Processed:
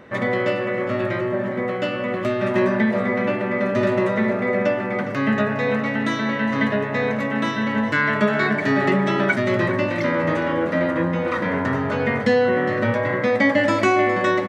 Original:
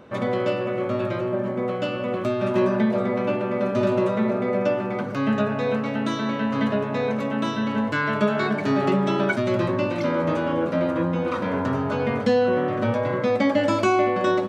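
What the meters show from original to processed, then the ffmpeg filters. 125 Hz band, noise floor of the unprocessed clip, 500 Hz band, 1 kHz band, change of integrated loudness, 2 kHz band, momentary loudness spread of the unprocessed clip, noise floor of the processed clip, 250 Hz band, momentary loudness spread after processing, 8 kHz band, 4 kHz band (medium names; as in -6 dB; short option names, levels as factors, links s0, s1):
+1.5 dB, -28 dBFS, +1.5 dB, +2.0 dB, +2.5 dB, +7.5 dB, 5 LU, -26 dBFS, +1.5 dB, 5 LU, no reading, +2.5 dB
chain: -filter_complex "[0:a]equalizer=f=1900:w=4.8:g=14,asplit=2[s0][s1];[s1]aecho=0:1:410:0.2[s2];[s0][s2]amix=inputs=2:normalize=0,volume=1.19"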